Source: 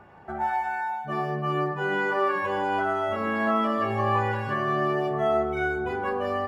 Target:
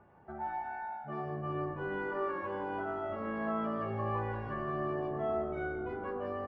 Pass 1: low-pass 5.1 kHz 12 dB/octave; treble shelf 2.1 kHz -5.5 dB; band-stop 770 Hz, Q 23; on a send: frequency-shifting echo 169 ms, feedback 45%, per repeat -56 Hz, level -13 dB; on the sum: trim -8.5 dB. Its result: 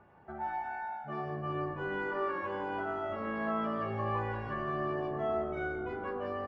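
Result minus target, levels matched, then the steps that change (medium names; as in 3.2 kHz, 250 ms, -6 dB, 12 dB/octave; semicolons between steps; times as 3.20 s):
4 kHz band +4.5 dB
change: treble shelf 2.1 kHz -13.5 dB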